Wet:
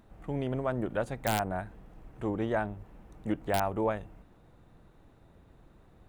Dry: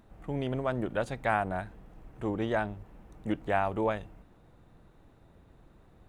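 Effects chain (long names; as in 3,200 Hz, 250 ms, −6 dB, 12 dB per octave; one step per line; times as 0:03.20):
wrap-around overflow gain 16.5 dB
dynamic equaliser 3,900 Hz, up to −7 dB, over −50 dBFS, Q 0.78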